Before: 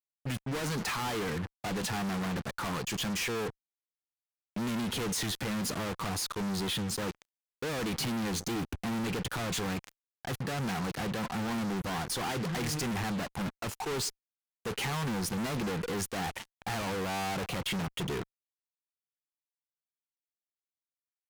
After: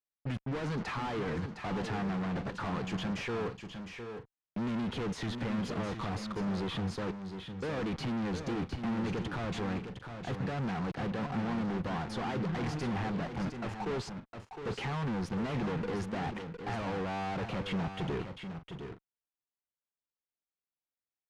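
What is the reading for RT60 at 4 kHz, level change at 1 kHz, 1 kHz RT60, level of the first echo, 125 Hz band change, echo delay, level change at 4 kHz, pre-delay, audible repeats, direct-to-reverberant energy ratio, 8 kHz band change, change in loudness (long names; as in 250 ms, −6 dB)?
no reverb audible, −1.5 dB, no reverb audible, −8.0 dB, +0.5 dB, 709 ms, −8.0 dB, no reverb audible, 2, no reverb audible, −16.0 dB, −2.0 dB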